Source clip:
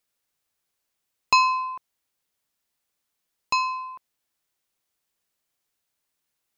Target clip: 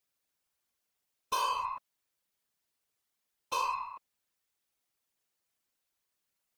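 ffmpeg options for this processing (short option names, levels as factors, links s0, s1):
-af "aeval=exprs='0.531*(cos(1*acos(clip(val(0)/0.531,-1,1)))-cos(1*PI/2))+0.0841*(cos(4*acos(clip(val(0)/0.531,-1,1)))-cos(4*PI/2))+0.0266*(cos(5*acos(clip(val(0)/0.531,-1,1)))-cos(5*PI/2))':c=same,volume=15,asoftclip=hard,volume=0.0668,afftfilt=real='hypot(re,im)*cos(2*PI*random(0))':imag='hypot(re,im)*sin(2*PI*random(1))':win_size=512:overlap=0.75"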